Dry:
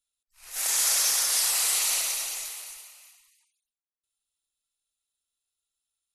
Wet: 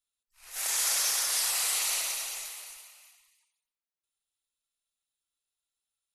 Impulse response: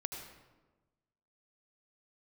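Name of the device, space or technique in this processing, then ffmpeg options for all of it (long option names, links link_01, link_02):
filtered reverb send: -filter_complex "[0:a]asplit=2[link_01][link_02];[link_02]highpass=390,lowpass=4800[link_03];[1:a]atrim=start_sample=2205[link_04];[link_03][link_04]afir=irnorm=-1:irlink=0,volume=-9dB[link_05];[link_01][link_05]amix=inputs=2:normalize=0,volume=-4dB"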